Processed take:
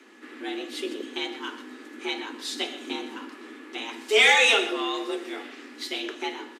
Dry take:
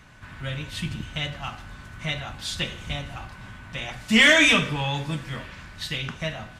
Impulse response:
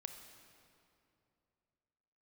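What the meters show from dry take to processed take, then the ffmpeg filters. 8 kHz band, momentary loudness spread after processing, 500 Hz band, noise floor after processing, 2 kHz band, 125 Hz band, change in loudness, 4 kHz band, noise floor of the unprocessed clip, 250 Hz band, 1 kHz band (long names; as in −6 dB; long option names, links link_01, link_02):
−1.5 dB, 21 LU, +2.5 dB, −46 dBFS, −2.5 dB, below −35 dB, −1.5 dB, −1.0 dB, −45 dBFS, −5.5 dB, +2.5 dB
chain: -af "aresample=32000,aresample=44100,afreqshift=210,aecho=1:1:125:0.188,volume=-2dB"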